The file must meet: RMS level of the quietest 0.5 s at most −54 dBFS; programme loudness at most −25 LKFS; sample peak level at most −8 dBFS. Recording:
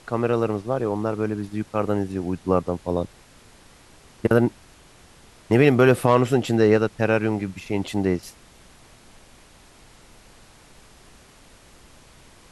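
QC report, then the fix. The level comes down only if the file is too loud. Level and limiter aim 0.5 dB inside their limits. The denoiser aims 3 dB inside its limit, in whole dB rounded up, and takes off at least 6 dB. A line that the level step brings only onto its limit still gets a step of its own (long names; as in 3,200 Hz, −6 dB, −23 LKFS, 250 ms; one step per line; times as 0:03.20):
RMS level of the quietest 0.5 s −51 dBFS: out of spec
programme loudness −22.0 LKFS: out of spec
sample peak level −3.5 dBFS: out of spec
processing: level −3.5 dB
brickwall limiter −8.5 dBFS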